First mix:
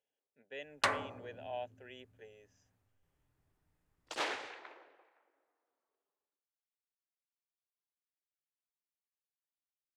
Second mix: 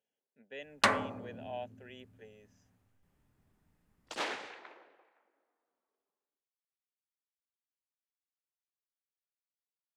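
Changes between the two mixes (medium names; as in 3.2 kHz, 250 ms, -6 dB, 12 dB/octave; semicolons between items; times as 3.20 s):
first sound +4.5 dB; master: add peaking EQ 210 Hz +12.5 dB 0.38 oct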